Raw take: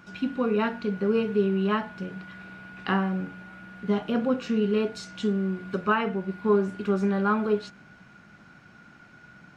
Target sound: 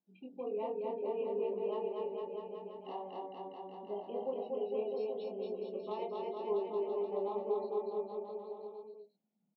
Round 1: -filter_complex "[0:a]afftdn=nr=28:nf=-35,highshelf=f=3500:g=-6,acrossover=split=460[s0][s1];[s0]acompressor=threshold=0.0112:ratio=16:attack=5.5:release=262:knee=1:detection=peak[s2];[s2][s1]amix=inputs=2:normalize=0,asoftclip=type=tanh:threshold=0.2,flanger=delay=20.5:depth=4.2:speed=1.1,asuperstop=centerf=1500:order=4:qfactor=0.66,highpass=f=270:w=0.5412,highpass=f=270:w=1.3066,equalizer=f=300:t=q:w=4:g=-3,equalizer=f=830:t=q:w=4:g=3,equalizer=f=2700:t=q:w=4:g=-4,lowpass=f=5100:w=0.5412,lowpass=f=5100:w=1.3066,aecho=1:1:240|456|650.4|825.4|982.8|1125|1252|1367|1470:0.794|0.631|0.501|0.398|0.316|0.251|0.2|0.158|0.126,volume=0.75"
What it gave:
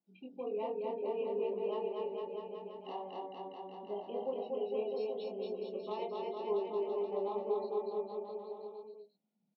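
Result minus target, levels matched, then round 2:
4 kHz band +3.5 dB
-filter_complex "[0:a]afftdn=nr=28:nf=-35,highshelf=f=3500:g=-15,acrossover=split=460[s0][s1];[s0]acompressor=threshold=0.0112:ratio=16:attack=5.5:release=262:knee=1:detection=peak[s2];[s2][s1]amix=inputs=2:normalize=0,asoftclip=type=tanh:threshold=0.2,flanger=delay=20.5:depth=4.2:speed=1.1,asuperstop=centerf=1500:order=4:qfactor=0.66,highpass=f=270:w=0.5412,highpass=f=270:w=1.3066,equalizer=f=300:t=q:w=4:g=-3,equalizer=f=830:t=q:w=4:g=3,equalizer=f=2700:t=q:w=4:g=-4,lowpass=f=5100:w=0.5412,lowpass=f=5100:w=1.3066,aecho=1:1:240|456|650.4|825.4|982.8|1125|1252|1367|1470:0.794|0.631|0.501|0.398|0.316|0.251|0.2|0.158|0.126,volume=0.75"

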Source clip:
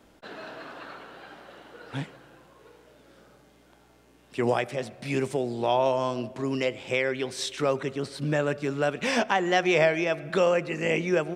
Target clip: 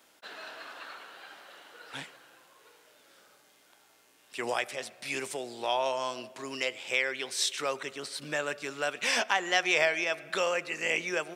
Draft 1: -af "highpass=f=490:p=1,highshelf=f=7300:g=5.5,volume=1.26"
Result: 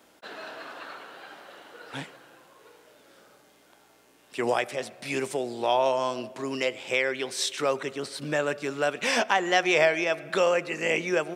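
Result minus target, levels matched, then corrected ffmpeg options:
500 Hz band +3.5 dB
-af "highpass=f=1600:p=1,highshelf=f=7300:g=5.5,volume=1.26"

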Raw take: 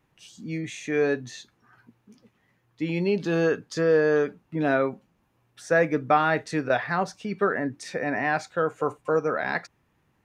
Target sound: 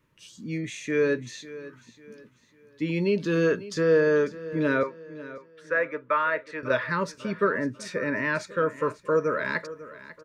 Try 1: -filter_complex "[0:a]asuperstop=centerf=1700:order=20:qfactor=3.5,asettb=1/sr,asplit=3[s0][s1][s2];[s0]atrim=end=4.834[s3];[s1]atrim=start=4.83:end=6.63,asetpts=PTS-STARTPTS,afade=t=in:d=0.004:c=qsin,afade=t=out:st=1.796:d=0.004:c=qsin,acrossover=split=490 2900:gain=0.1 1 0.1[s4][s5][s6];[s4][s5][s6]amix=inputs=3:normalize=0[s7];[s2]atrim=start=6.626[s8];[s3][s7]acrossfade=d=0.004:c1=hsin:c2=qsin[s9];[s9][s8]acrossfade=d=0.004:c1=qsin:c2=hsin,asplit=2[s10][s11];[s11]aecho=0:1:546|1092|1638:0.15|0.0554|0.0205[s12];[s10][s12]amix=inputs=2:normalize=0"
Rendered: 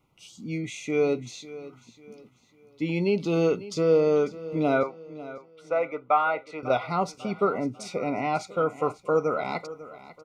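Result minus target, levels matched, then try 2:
2 kHz band -7.0 dB
-filter_complex "[0:a]asuperstop=centerf=750:order=20:qfactor=3.5,asettb=1/sr,asplit=3[s0][s1][s2];[s0]atrim=end=4.834[s3];[s1]atrim=start=4.83:end=6.63,asetpts=PTS-STARTPTS,afade=t=in:d=0.004:c=qsin,afade=t=out:st=1.796:d=0.004:c=qsin,acrossover=split=490 2900:gain=0.1 1 0.1[s4][s5][s6];[s4][s5][s6]amix=inputs=3:normalize=0[s7];[s2]atrim=start=6.626[s8];[s3][s7]acrossfade=d=0.004:c1=hsin:c2=qsin[s9];[s9][s8]acrossfade=d=0.004:c1=qsin:c2=hsin,asplit=2[s10][s11];[s11]aecho=0:1:546|1092|1638:0.15|0.0554|0.0205[s12];[s10][s12]amix=inputs=2:normalize=0"

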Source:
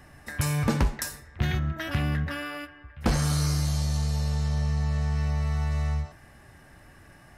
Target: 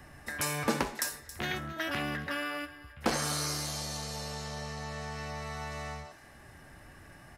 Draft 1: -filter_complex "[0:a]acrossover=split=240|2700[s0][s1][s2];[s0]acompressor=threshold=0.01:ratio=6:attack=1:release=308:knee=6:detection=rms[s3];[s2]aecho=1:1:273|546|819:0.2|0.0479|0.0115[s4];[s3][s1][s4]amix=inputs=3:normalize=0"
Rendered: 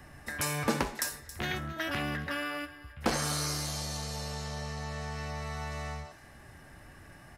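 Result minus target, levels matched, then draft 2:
compression: peak gain reduction -5 dB
-filter_complex "[0:a]acrossover=split=240|2700[s0][s1][s2];[s0]acompressor=threshold=0.00501:ratio=6:attack=1:release=308:knee=6:detection=rms[s3];[s2]aecho=1:1:273|546|819:0.2|0.0479|0.0115[s4];[s3][s1][s4]amix=inputs=3:normalize=0"

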